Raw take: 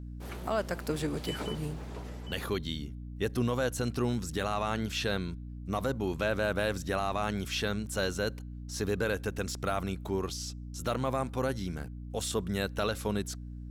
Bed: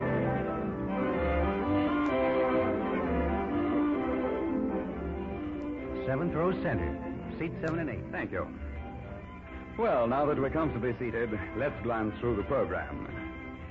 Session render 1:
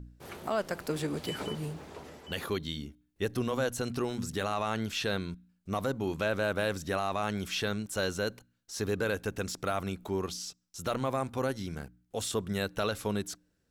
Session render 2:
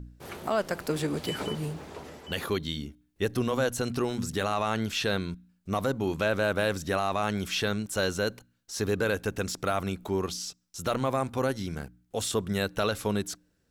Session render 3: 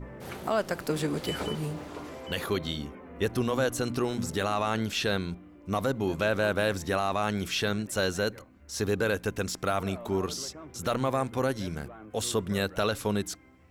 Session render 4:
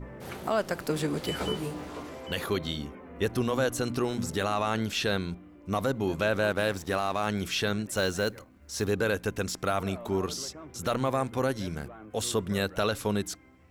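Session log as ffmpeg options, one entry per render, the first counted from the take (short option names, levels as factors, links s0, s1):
-af "bandreject=f=60:t=h:w=4,bandreject=f=120:t=h:w=4,bandreject=f=180:t=h:w=4,bandreject=f=240:t=h:w=4,bandreject=f=300:t=h:w=4"
-af "volume=1.5"
-filter_complex "[1:a]volume=0.158[s0];[0:a][s0]amix=inputs=2:normalize=0"
-filter_complex "[0:a]asettb=1/sr,asplit=3[s0][s1][s2];[s0]atrim=end=1.394[s3];[s1]atrim=start=1.39:end=2.03,asetpts=PTS-STARTPTS,afade=t=in:d=0.004:c=qsin,afade=t=out:st=0.636:d=0.004:c=qsin,asplit=2[s4][s5];[s5]adelay=16,volume=0.631[s6];[s4][s6]amix=inputs=2:normalize=0,atrim=end_sample=28224[s7];[s2]atrim=start=2.026[s8];[s3][s7]acrossfade=d=0.004:c1=hsin:c2=qsin[s9];[s9][s8]acrossfade=d=0.004:c1=qsin:c2=hsin,asettb=1/sr,asplit=3[s10][s11][s12];[s10]atrim=end=6.504[s13];[s11]atrim=start=6.5:end=7.27,asetpts=PTS-STARTPTS,afade=t=in:d=0.004:c=qsin,afade=t=out:st=0.766:d=0.004:c=qsin,aeval=exprs='sgn(val(0))*max(abs(val(0))-0.00668,0)':c=same[s14];[s12]atrim=start=7.266[s15];[s13][s14]acrossfade=d=0.004:c1=hsin:c2=qsin[s16];[s16][s15]acrossfade=d=0.004:c1=qsin:c2=hsin,asettb=1/sr,asplit=3[s17][s18][s19];[s17]atrim=end=7.954[s20];[s18]atrim=start=7.95:end=8.85,asetpts=PTS-STARTPTS,afade=t=in:d=0.004:c=qsin,afade=t=out:st=0.896:d=0.004:c=qsin,acrusher=bits=6:mode=log:mix=0:aa=0.000001[s21];[s19]atrim=start=8.846[s22];[s20][s21]acrossfade=d=0.004:c1=hsin:c2=qsin[s23];[s23][s22]acrossfade=d=0.004:c1=qsin:c2=hsin"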